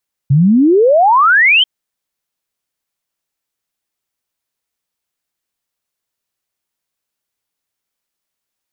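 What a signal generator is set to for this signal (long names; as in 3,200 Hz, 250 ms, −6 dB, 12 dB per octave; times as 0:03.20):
exponential sine sweep 130 Hz → 3,200 Hz 1.34 s −6 dBFS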